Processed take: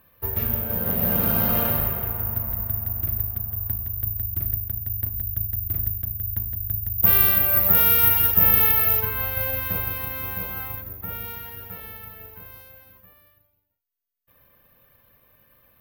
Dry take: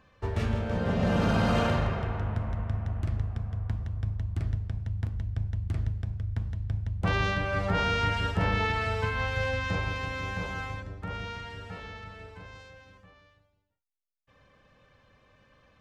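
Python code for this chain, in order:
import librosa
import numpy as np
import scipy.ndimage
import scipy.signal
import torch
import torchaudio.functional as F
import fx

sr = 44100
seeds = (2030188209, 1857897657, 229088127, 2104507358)

y = (np.kron(scipy.signal.resample_poly(x, 1, 3), np.eye(3)[0]) * 3)[:len(x)]
y = fx.high_shelf(y, sr, hz=3300.0, db=8.0, at=(6.98, 9.0))
y = y * librosa.db_to_amplitude(-1.5)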